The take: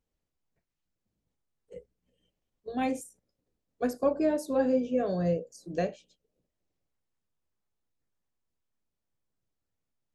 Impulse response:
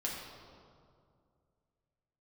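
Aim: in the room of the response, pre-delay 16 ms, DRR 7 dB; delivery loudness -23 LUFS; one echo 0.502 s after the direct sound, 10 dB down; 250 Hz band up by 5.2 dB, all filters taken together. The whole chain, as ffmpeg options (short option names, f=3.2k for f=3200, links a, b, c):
-filter_complex "[0:a]equalizer=f=250:t=o:g=6,aecho=1:1:502:0.316,asplit=2[a][b];[1:a]atrim=start_sample=2205,adelay=16[c];[b][c]afir=irnorm=-1:irlink=0,volume=-10dB[d];[a][d]amix=inputs=2:normalize=0,volume=2.5dB"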